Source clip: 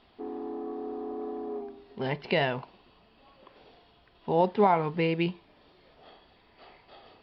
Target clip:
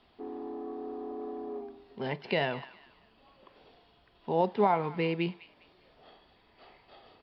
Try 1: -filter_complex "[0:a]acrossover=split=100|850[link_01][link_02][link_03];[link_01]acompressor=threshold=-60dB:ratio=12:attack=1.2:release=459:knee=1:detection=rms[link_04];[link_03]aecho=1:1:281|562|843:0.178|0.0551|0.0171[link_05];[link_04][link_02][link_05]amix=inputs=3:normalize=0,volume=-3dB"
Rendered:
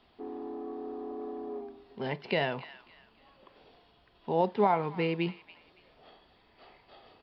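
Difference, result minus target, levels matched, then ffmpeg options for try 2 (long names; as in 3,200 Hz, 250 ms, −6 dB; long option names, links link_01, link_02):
echo 79 ms late
-filter_complex "[0:a]acrossover=split=100|850[link_01][link_02][link_03];[link_01]acompressor=threshold=-60dB:ratio=12:attack=1.2:release=459:knee=1:detection=rms[link_04];[link_03]aecho=1:1:202|404|606:0.178|0.0551|0.0171[link_05];[link_04][link_02][link_05]amix=inputs=3:normalize=0,volume=-3dB"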